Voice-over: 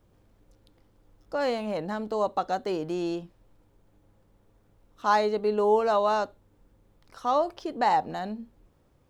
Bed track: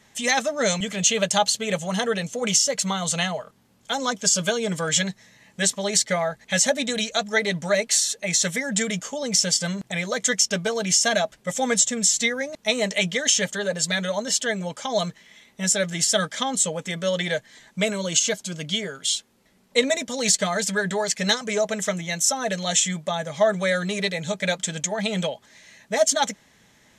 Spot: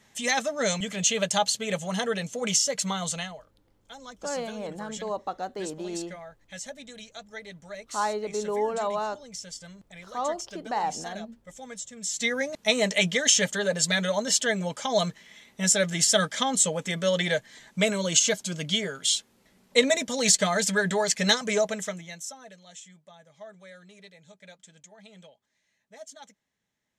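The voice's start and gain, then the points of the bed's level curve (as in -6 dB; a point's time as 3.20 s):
2.90 s, -5.0 dB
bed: 3.04 s -4 dB
3.51 s -19 dB
11.92 s -19 dB
12.34 s -0.5 dB
21.57 s -0.5 dB
22.63 s -25.5 dB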